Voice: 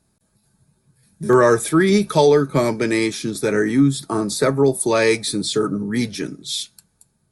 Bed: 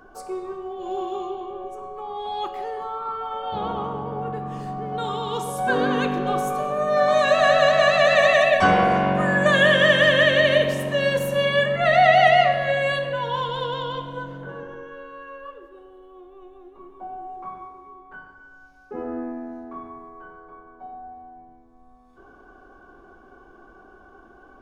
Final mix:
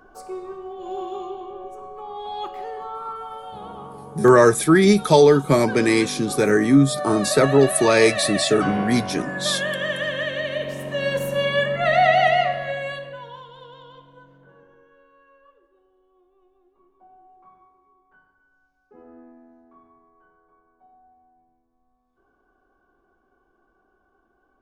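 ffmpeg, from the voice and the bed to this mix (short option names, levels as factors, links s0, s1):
-filter_complex "[0:a]adelay=2950,volume=1.12[s0];[1:a]volume=2.11,afade=t=out:st=3.05:d=0.53:silence=0.421697,afade=t=in:st=10.55:d=0.68:silence=0.375837,afade=t=out:st=12.01:d=1.43:silence=0.16788[s1];[s0][s1]amix=inputs=2:normalize=0"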